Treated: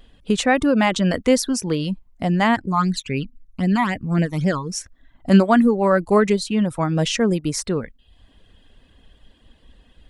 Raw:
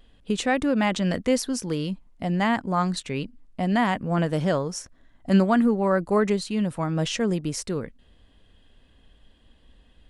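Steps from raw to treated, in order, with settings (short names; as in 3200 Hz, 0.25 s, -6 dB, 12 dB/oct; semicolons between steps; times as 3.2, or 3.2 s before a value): reverb removal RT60 0.56 s; 2.56–4.72 phaser stages 12, 3.8 Hz, lowest notch 490–1200 Hz; gain +6 dB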